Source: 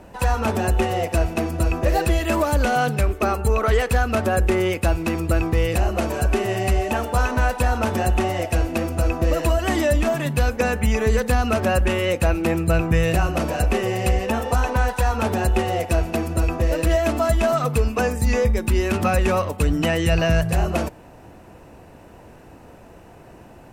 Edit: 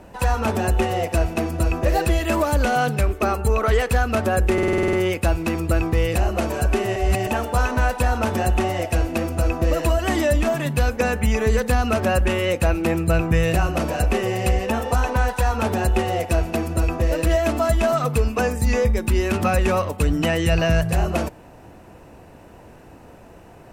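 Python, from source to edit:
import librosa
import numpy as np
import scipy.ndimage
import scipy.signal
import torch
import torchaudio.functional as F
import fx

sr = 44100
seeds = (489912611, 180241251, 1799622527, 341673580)

y = fx.edit(x, sr, fx.stutter(start_s=4.53, slice_s=0.05, count=9),
    fx.reverse_span(start_s=6.56, length_s=0.31), tone=tone)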